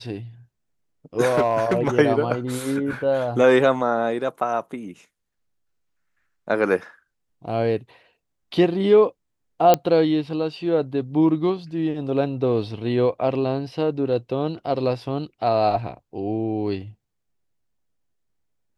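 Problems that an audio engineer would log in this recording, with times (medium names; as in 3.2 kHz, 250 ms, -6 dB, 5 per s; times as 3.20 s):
1.30–1.89 s: clipped -14 dBFS
9.74 s: pop -3 dBFS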